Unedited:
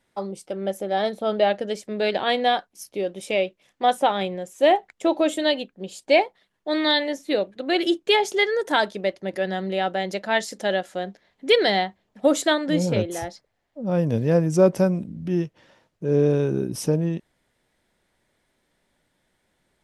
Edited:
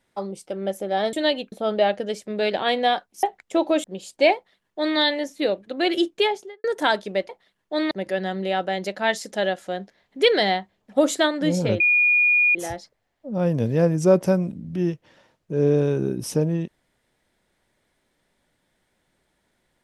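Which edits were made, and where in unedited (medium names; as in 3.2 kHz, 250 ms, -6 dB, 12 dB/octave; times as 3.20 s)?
2.84–4.73 s: delete
5.34–5.73 s: move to 1.13 s
6.24–6.86 s: copy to 9.18 s
8.00–8.53 s: studio fade out
13.07 s: add tone 2.44 kHz -14.5 dBFS 0.75 s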